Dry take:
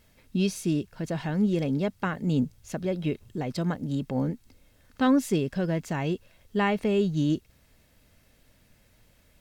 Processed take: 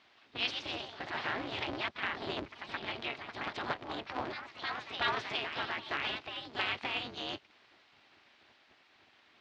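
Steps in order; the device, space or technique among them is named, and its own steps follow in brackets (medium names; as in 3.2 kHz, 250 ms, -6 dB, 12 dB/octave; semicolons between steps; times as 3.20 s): spectral gate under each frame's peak -15 dB weak; ever faster or slower copies 174 ms, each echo +2 st, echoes 3, each echo -6 dB; ring modulator pedal into a guitar cabinet (polarity switched at an audio rate 120 Hz; cabinet simulation 98–4200 Hz, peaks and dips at 130 Hz -5 dB, 180 Hz -8 dB, 500 Hz -8 dB); trim +5 dB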